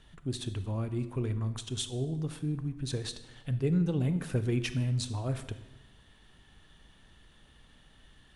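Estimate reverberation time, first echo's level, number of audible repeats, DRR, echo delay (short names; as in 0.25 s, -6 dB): 1.0 s, none, none, 11.0 dB, none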